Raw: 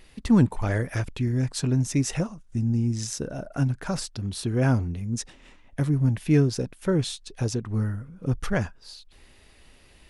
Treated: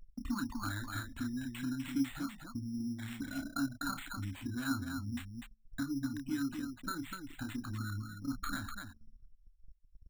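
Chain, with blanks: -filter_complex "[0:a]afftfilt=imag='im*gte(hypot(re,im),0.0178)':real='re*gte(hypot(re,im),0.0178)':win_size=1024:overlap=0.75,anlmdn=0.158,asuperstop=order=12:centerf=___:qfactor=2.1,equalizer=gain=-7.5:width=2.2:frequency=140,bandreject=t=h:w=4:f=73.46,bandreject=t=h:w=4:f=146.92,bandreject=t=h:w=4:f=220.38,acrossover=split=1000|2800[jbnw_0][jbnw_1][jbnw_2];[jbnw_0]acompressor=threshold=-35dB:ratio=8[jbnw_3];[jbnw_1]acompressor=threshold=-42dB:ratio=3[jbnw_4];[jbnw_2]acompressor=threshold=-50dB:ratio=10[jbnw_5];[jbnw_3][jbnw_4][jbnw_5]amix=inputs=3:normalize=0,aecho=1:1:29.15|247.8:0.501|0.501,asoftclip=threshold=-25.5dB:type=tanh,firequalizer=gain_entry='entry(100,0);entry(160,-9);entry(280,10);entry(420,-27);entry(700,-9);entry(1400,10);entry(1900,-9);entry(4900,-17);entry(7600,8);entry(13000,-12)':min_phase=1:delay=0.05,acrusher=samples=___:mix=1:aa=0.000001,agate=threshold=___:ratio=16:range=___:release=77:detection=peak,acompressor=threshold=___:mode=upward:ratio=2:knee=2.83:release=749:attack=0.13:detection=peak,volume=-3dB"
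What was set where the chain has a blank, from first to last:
5100, 8, -54dB, -11dB, -35dB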